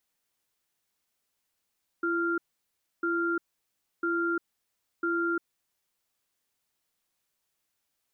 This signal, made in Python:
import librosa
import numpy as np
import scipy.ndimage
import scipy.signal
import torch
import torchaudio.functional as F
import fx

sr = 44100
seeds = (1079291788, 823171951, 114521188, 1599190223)

y = fx.cadence(sr, length_s=3.37, low_hz=338.0, high_hz=1390.0, on_s=0.35, off_s=0.65, level_db=-28.0)